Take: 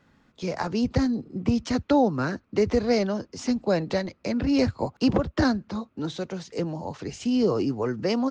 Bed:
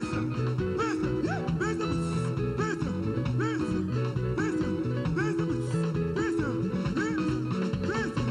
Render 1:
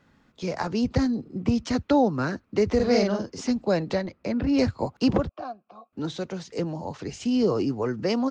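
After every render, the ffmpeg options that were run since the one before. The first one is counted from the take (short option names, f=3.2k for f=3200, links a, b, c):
-filter_complex "[0:a]asettb=1/sr,asplit=3[a][b][c];[a]atrim=end=2.754[d];[b]atrim=start=2.75:end=3.41,asetpts=PTS-STARTPTS,afade=t=in:d=0.004:c=qsin,afade=t=out:st=0.656:d=0.004:c=qsin,asplit=2[e][f];[f]adelay=45,volume=-2.5dB[g];[e][g]amix=inputs=2:normalize=0,atrim=end_sample=29106[h];[c]atrim=start=3.406[i];[d][h]acrossfade=d=0.004:c1=hsin:c2=qsin[j];[j][i]acrossfade=d=0.004:c1=qsin:c2=hsin,asettb=1/sr,asplit=3[k][l][m];[k]atrim=end=3.954[n];[l]atrim=start=3.95:end=4.58,asetpts=PTS-STARTPTS,afade=t=in:d=0.004:c=qsin,afade=t=out:st=0.626:d=0.004:c=qsin,highshelf=f=4.5k:g=-11[o];[m]atrim=start=4.576[p];[n][o]acrossfade=d=0.004:c1=hsin:c2=qsin[q];[q][p]acrossfade=d=0.004:c1=qsin:c2=hsin,asettb=1/sr,asplit=3[r][s][t];[r]atrim=end=5.294[u];[s]atrim=start=5.29:end=5.93,asetpts=PTS-STARTPTS,afade=t=in:d=0.004:c=qsin,afade=t=out:st=0.636:d=0.004:c=qsin,asplit=3[v][w][x];[v]bandpass=f=730:t=q:w=8,volume=0dB[y];[w]bandpass=f=1.09k:t=q:w=8,volume=-6dB[z];[x]bandpass=f=2.44k:t=q:w=8,volume=-9dB[aa];[y][z][aa]amix=inputs=3:normalize=0[ab];[t]atrim=start=5.926[ac];[u][ab]acrossfade=d=0.004:c1=hsin:c2=qsin[ad];[ad][ac]acrossfade=d=0.004:c1=qsin:c2=hsin"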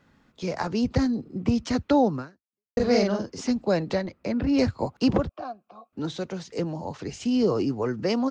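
-filter_complex "[0:a]asplit=2[a][b];[a]atrim=end=2.77,asetpts=PTS-STARTPTS,afade=t=out:st=2.16:d=0.61:c=exp[c];[b]atrim=start=2.77,asetpts=PTS-STARTPTS,afade=t=in:d=0.004:c=hsin[d];[c][d]concat=n=2:v=0:a=1"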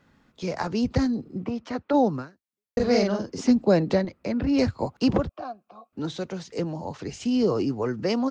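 -filter_complex "[0:a]asplit=3[a][b][c];[a]afade=t=out:st=1.44:d=0.02[d];[b]bandpass=f=840:t=q:w=0.61,afade=t=in:st=1.44:d=0.02,afade=t=out:st=1.93:d=0.02[e];[c]afade=t=in:st=1.93:d=0.02[f];[d][e][f]amix=inputs=3:normalize=0,asettb=1/sr,asplit=3[g][h][i];[g]atrim=end=3.284[j];[h]atrim=start=3.28:end=4.05,asetpts=PTS-STARTPTS,afade=t=in:d=0.004:c=qsin,afade=t=out:st=0.766:d=0.004:c=qsin,equalizer=f=260:t=o:w=2.4:g=6[k];[i]atrim=start=4.046[l];[j][k]acrossfade=d=0.004:c1=hsin:c2=qsin[m];[m][l]acrossfade=d=0.004:c1=qsin:c2=hsin"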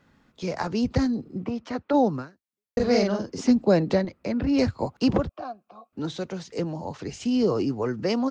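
-af anull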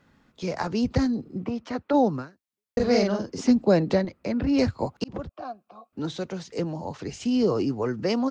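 -filter_complex "[0:a]asplit=2[a][b];[a]atrim=end=5.04,asetpts=PTS-STARTPTS,afade=t=out:st=5.036:d=0.004:c=hsin[c];[b]atrim=start=5.04,asetpts=PTS-STARTPTS,afade=t=in:d=0.46[d];[c][d]concat=n=2:v=0:a=1"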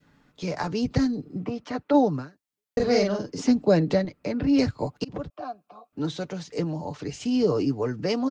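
-af "adynamicequalizer=threshold=0.0112:dfrequency=1000:dqfactor=0.9:tfrequency=1000:tqfactor=0.9:attack=5:release=100:ratio=0.375:range=2.5:mode=cutabove:tftype=bell,aecho=1:1:6.8:0.4"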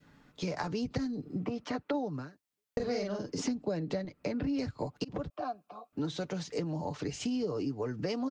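-af "acompressor=threshold=-31dB:ratio=6"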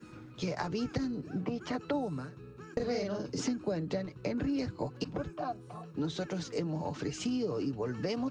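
-filter_complex "[1:a]volume=-20dB[a];[0:a][a]amix=inputs=2:normalize=0"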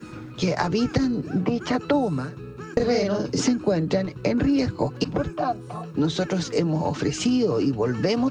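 -af "volume=11.5dB"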